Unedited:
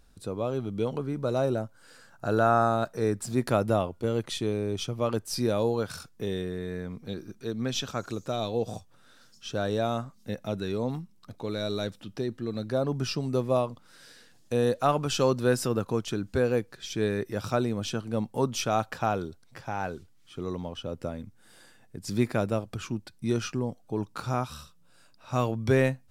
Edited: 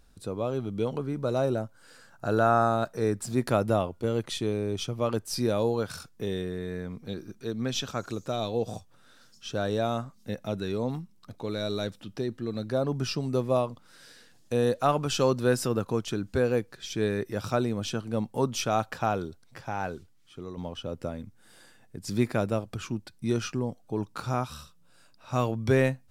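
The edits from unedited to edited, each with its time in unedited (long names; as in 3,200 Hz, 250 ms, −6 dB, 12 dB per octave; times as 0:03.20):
0:19.93–0:20.57: fade out, to −8 dB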